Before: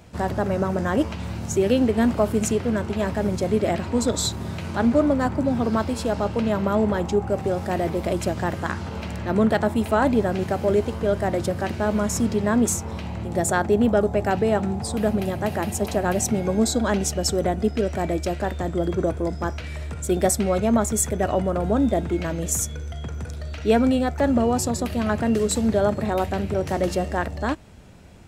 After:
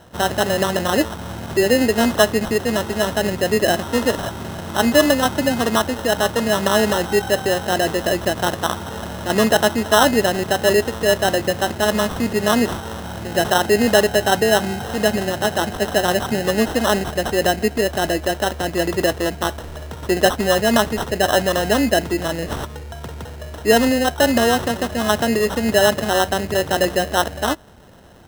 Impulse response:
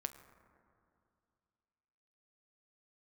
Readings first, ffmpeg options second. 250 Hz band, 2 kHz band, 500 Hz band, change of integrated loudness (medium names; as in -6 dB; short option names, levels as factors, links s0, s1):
+1.0 dB, +10.5 dB, +5.0 dB, +4.5 dB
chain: -af "equalizer=f=830:w=0.41:g=10.5,acrusher=samples=19:mix=1:aa=0.000001,volume=0.708"